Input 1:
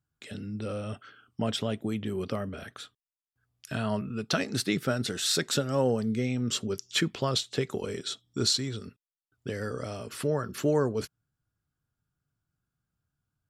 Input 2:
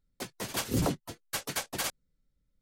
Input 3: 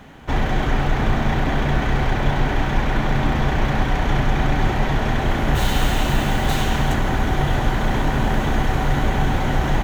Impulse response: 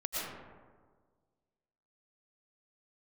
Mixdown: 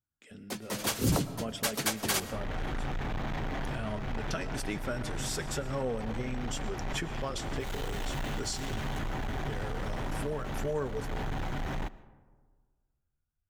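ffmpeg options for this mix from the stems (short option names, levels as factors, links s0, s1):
-filter_complex "[0:a]asubboost=boost=9.5:cutoff=56,flanger=delay=3.2:depth=2:regen=-58:speed=0.8:shape=triangular,equalizer=f=4000:w=4.3:g=-12.5,volume=0.501,asplit=3[s0][s1][s2];[s1]volume=0.141[s3];[1:a]acrossover=split=180|3000[s4][s5][s6];[s5]acompressor=threshold=0.0282:ratio=6[s7];[s4][s7][s6]amix=inputs=3:normalize=0,adelay=300,volume=0.944,asplit=2[s8][s9];[s9]volume=0.15[s10];[2:a]flanger=delay=6.1:depth=1.5:regen=-61:speed=1.7:shape=sinusoidal,asoftclip=type=tanh:threshold=0.0531,alimiter=level_in=2.51:limit=0.0631:level=0:latency=1:release=371,volume=0.398,adelay=2050,volume=0.794,asplit=2[s11][s12];[s12]volume=0.0794[s13];[s2]apad=whole_len=524026[s14];[s11][s14]sidechaincompress=threshold=0.00708:ratio=8:attack=30:release=285[s15];[3:a]atrim=start_sample=2205[s16];[s3][s10][s13]amix=inputs=3:normalize=0[s17];[s17][s16]afir=irnorm=-1:irlink=0[s18];[s0][s8][s15][s18]amix=inputs=4:normalize=0,dynaudnorm=f=590:g=3:m=1.41"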